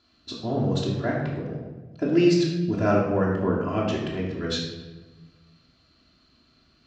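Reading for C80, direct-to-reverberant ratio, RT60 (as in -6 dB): 4.5 dB, -5.5 dB, 1.2 s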